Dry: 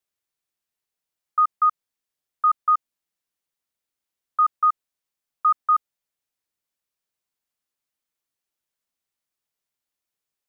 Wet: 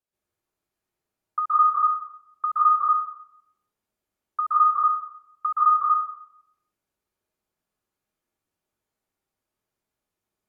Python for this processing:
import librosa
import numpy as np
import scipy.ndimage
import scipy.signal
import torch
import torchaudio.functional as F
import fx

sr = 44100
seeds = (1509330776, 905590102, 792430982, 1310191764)

y = fx.env_lowpass_down(x, sr, base_hz=1000.0, full_db=-19.0)
y = fx.tilt_shelf(y, sr, db=5.5, hz=1300.0)
y = fx.rev_plate(y, sr, seeds[0], rt60_s=0.72, hf_ratio=0.5, predelay_ms=115, drr_db=-8.5)
y = y * librosa.db_to_amplitude(-4.0)